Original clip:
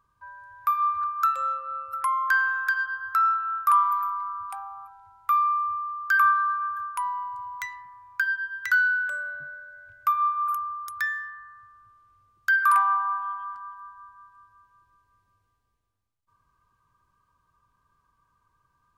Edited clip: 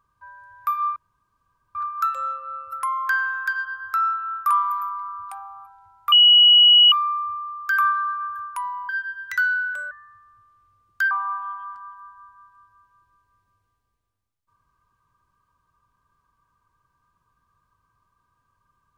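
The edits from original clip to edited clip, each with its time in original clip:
0.96 insert room tone 0.79 s
5.33 add tone 2920 Hz -9 dBFS 0.80 s
7.3–8.23 cut
9.25–11.39 cut
12.59–12.91 cut

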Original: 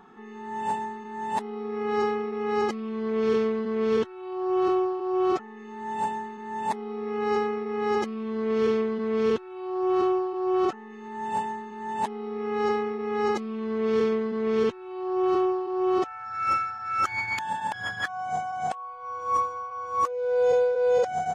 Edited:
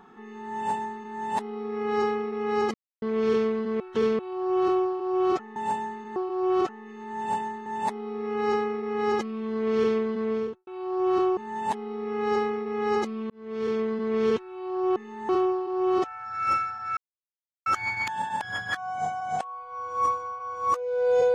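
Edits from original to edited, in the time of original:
2.74–3.02 mute
3.8–4.19 reverse
5.56–5.89 move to 15.29
9.03–9.5 studio fade out
10.2–11.7 move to 6.49
13.63–14.25 fade in linear
16.97 insert silence 0.69 s

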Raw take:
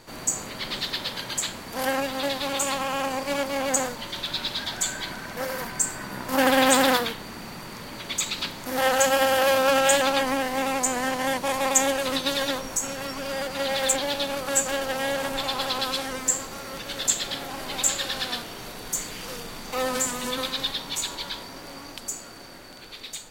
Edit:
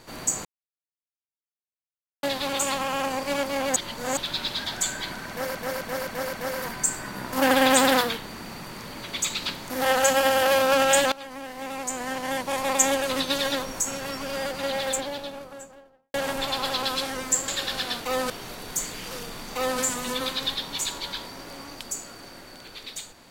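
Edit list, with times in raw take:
0.45–2.23 mute
3.76–4.17 reverse
5.29–5.55 loop, 5 plays
10.08–11.86 fade in, from -20 dB
13.34–15.1 studio fade out
16.44–17.9 cut
19.72–19.97 copy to 18.47

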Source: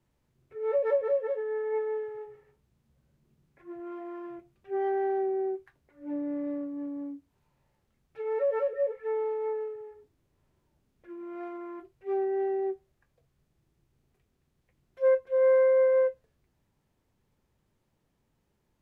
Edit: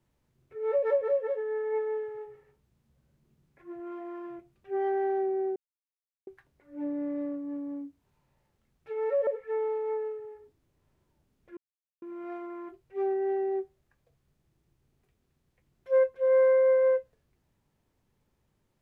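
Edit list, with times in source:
5.56 insert silence 0.71 s
8.56–8.83 cut
11.13 insert silence 0.45 s

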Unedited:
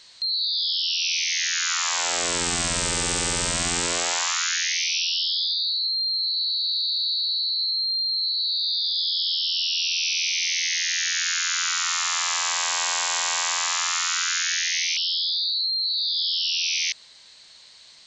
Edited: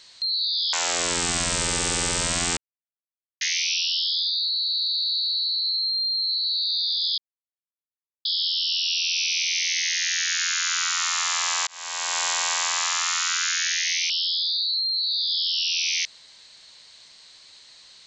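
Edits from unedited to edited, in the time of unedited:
0.73–1.97 cut
3.81–4.65 mute
5.74–6.44 cut
9.12 insert silence 1.07 s
12.54–13.07 fade in

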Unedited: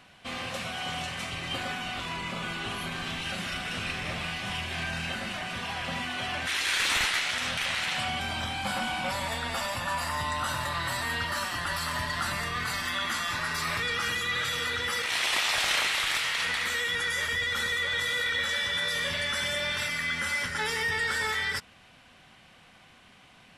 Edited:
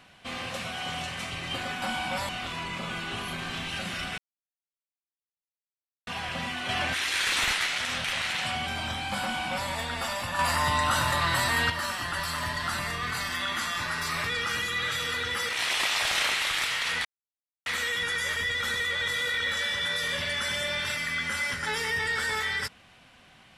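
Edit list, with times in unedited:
3.71–5.6 mute
6.22–6.47 gain +4 dB
8.75–9.22 copy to 1.82
9.92–11.23 gain +5.5 dB
16.58 insert silence 0.61 s

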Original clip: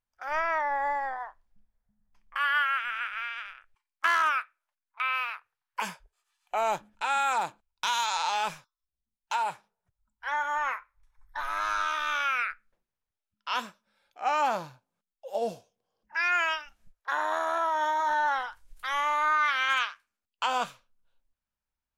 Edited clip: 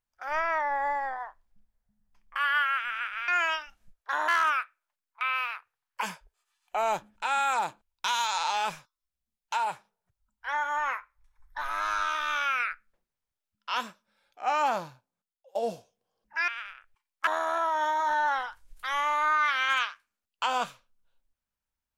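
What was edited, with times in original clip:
3.28–4.07 swap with 16.27–17.27
14.56–15.34 fade out, to -21.5 dB

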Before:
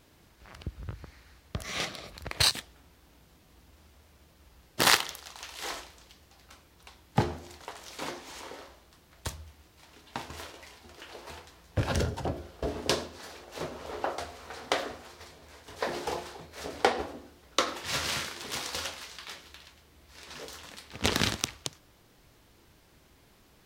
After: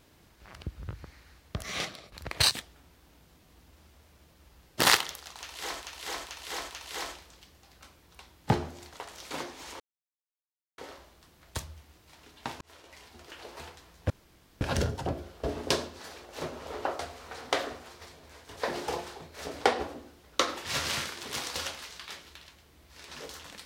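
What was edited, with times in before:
1.75–2.12 fade out, to -10.5 dB
5.38–5.82 loop, 4 plays
8.48 insert silence 0.98 s
10.31–10.77 fade in
11.8 insert room tone 0.51 s

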